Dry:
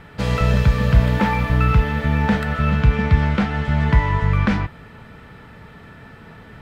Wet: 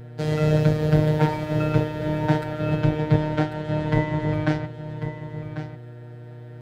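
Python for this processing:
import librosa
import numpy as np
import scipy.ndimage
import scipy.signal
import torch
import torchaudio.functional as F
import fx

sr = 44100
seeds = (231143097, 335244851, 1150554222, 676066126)

y = fx.octave_divider(x, sr, octaves=1, level_db=4.0)
y = fx.robotise(y, sr, hz=153.0)
y = scipy.signal.sosfilt(scipy.signal.butter(2, 66.0, 'highpass', fs=sr, output='sos'), y)
y = fx.peak_eq(y, sr, hz=670.0, db=9.0, octaves=1.4)
y = fx.notch(y, sr, hz=1200.0, q=14.0)
y = fx.dmg_buzz(y, sr, base_hz=120.0, harmonics=6, level_db=-32.0, tilt_db=-8, odd_only=False)
y = fx.graphic_eq_15(y, sr, hz=(250, 1000, 2500), db=(-4, -7, -5))
y = y + 10.0 ** (-8.0 / 20.0) * np.pad(y, (int(1094 * sr / 1000.0), 0))[:len(y)]
y = fx.upward_expand(y, sr, threshold_db=-28.0, expansion=1.5)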